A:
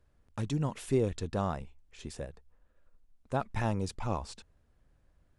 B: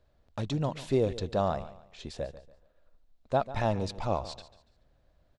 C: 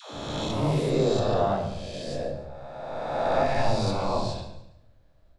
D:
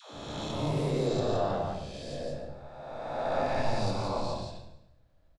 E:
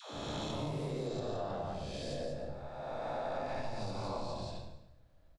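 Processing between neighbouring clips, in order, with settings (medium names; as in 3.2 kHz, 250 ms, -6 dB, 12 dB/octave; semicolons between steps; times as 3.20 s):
fifteen-band graphic EQ 630 Hz +9 dB, 4 kHz +8 dB, 10 kHz -10 dB; feedback delay 143 ms, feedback 32%, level -15.5 dB
reverse spectral sustain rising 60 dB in 2.06 s; phase dispersion lows, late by 140 ms, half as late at 410 Hz; on a send at -2.5 dB: reverberation RT60 0.75 s, pre-delay 3 ms; on the sum: trim -1.5 dB
delay 171 ms -3.5 dB; trim -6.5 dB
compression 6:1, threshold -36 dBFS, peak gain reduction 13 dB; trim +1 dB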